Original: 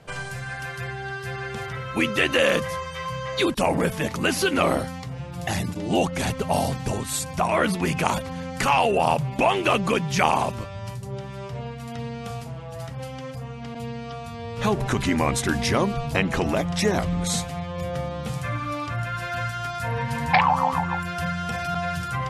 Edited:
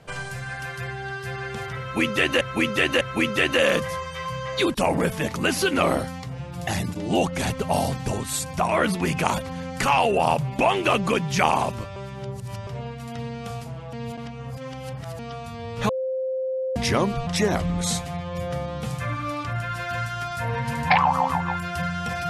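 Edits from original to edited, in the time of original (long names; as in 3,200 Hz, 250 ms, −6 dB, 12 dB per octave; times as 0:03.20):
0:01.81–0:02.41: repeat, 3 plays
0:10.76–0:11.47: reverse
0:12.73–0:13.99: reverse
0:14.69–0:15.56: beep over 522 Hz −23.5 dBFS
0:16.07–0:16.70: remove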